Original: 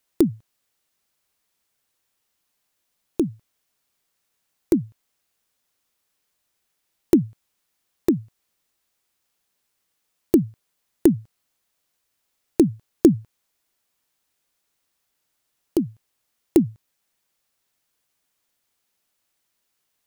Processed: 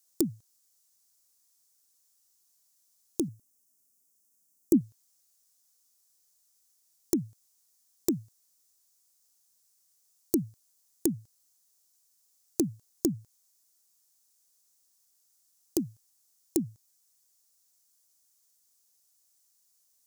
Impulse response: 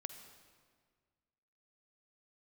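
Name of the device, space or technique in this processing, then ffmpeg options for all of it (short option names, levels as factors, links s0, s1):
over-bright horn tweeter: -filter_complex "[0:a]asettb=1/sr,asplit=3[s0][s1][s2];[s0]atrim=end=3.284[s3];[s1]atrim=start=3.28:end=4.81,asetpts=PTS-STARTPTS,afade=t=in:d=0.004:c=qsin,afade=t=out:st=1.526:d=0.004:c=qsin,equalizer=f=250:t=o:w=1:g=10,equalizer=f=1000:t=o:w=1:g=-4,equalizer=f=2000:t=o:w=1:g=-6,equalizer=f=4000:t=o:w=1:g=-11[s4];[s2]atrim=start=4.806[s5];[s3][s4]acrossfade=d=0.004:c1=hsin:c2=qsin[s6];[s6][s5]acrossfade=d=0.004:c1=qsin:c2=hsin,highshelf=f=4100:t=q:w=1.5:g=14,alimiter=limit=0.944:level=0:latency=1:release=298,volume=0.376"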